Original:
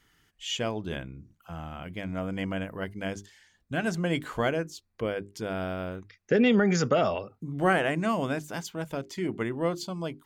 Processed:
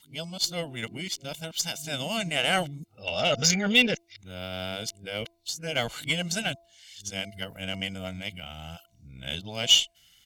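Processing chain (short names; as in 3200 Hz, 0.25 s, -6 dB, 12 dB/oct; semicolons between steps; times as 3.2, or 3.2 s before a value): whole clip reversed; resonant high shelf 2100 Hz +13.5 dB, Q 1.5; comb 1.4 ms, depth 58%; de-hum 337.8 Hz, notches 3; added harmonics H 6 -33 dB, 7 -30 dB, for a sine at -4.5 dBFS; gain -3 dB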